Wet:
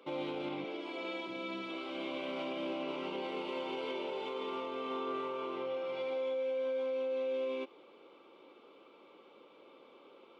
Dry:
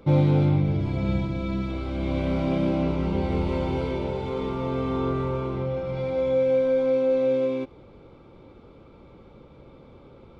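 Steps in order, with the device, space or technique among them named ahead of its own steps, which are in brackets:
0:00.64–0:01.27: high-pass filter 260 Hz 24 dB per octave
laptop speaker (high-pass filter 310 Hz 24 dB per octave; parametric band 1,100 Hz +6 dB 0.27 octaves; parametric band 2,900 Hz +12 dB 0.53 octaves; brickwall limiter −23 dBFS, peak gain reduction 8.5 dB)
parametric band 69 Hz +8.5 dB 1.1 octaves
level −7 dB

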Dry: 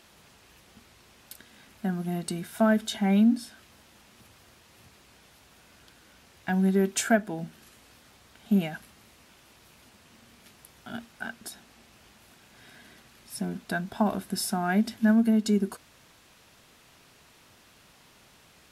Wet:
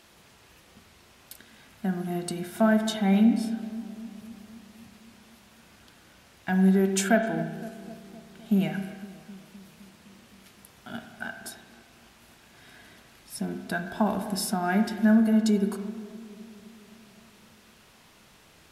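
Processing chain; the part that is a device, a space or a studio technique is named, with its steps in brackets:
dub delay into a spring reverb (feedback echo with a low-pass in the loop 257 ms, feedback 68%, low-pass 1,200 Hz, level −15.5 dB; spring reverb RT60 1.3 s, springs 31/37 ms, chirp 60 ms, DRR 6 dB)

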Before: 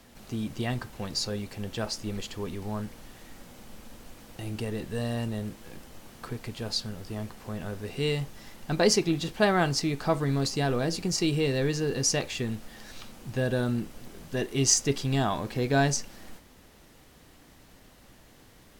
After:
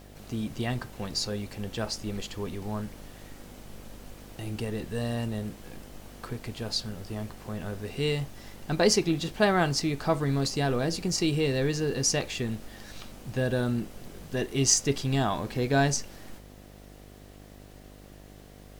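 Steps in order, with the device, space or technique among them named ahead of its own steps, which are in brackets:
video cassette with head-switching buzz (hum with harmonics 50 Hz, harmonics 15, −50 dBFS −4 dB per octave; white noise bed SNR 37 dB)

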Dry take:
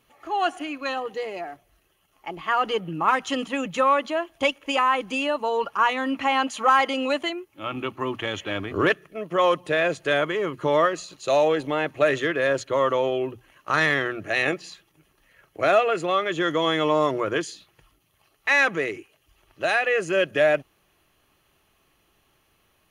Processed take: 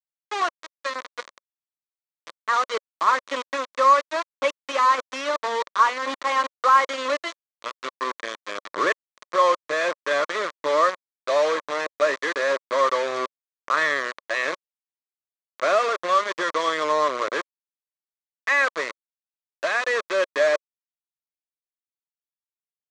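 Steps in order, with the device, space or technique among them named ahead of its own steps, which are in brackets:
hand-held game console (bit reduction 4 bits; loudspeaker in its box 420–5,900 Hz, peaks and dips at 560 Hz +5 dB, 790 Hz −7 dB, 1,100 Hz +9 dB, 1,900 Hz +3 dB, 2,800 Hz −7 dB, 5,100 Hz −6 dB)
level −2.5 dB

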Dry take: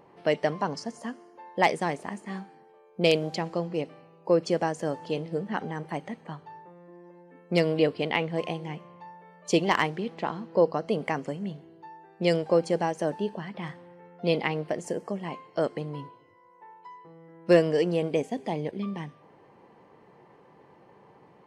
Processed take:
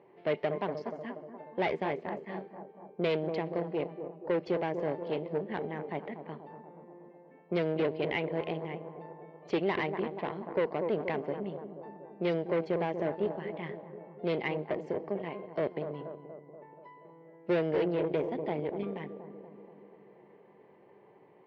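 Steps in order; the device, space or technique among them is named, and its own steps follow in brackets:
analogue delay pedal into a guitar amplifier (bucket-brigade delay 239 ms, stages 2,048, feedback 63%, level −10 dB; tube saturation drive 24 dB, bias 0.7; loudspeaker in its box 100–3,700 Hz, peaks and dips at 390 Hz +9 dB, 610 Hz +4 dB, 1,300 Hz −4 dB, 2,100 Hz +6 dB)
level −3.5 dB

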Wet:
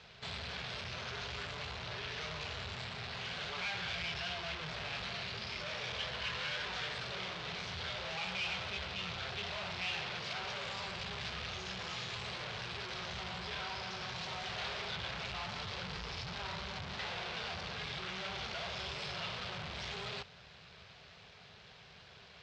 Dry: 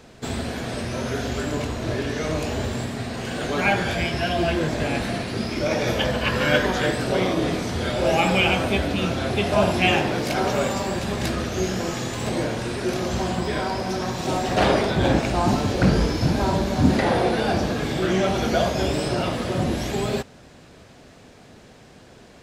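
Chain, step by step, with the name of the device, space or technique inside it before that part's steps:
scooped metal amplifier (tube saturation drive 35 dB, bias 0.65; loudspeaker in its box 77–4,400 Hz, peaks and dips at 170 Hz +6 dB, 400 Hz +7 dB, 1,800 Hz −3 dB; guitar amp tone stack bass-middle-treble 10-0-10)
level +5.5 dB

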